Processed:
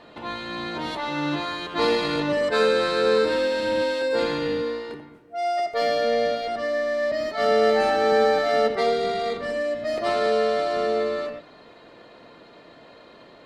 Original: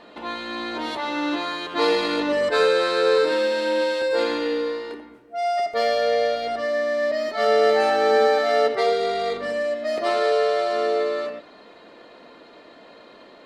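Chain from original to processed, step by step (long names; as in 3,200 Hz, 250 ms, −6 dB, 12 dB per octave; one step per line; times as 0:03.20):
sub-octave generator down 1 octave, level −6 dB
level −1.5 dB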